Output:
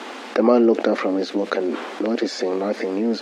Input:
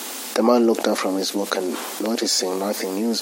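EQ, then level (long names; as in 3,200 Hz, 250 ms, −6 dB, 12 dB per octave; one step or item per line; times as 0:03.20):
dynamic equaliser 930 Hz, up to −7 dB, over −37 dBFS, Q 1.5
band-pass filter 220–2,300 Hz
+3.5 dB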